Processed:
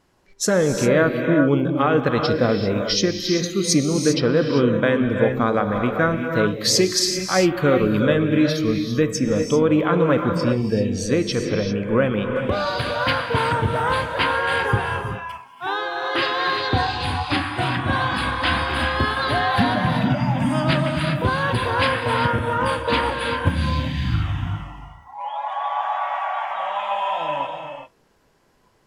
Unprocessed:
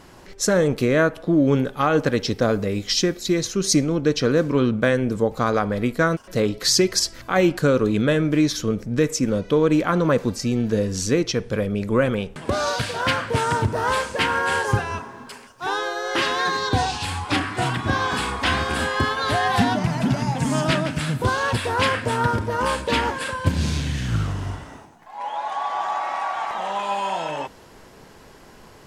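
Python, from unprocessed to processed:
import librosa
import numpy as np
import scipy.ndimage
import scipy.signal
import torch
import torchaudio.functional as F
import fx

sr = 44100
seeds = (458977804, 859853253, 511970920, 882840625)

y = fx.noise_reduce_blind(x, sr, reduce_db=16)
y = fx.rev_gated(y, sr, seeds[0], gate_ms=420, shape='rising', drr_db=4.0)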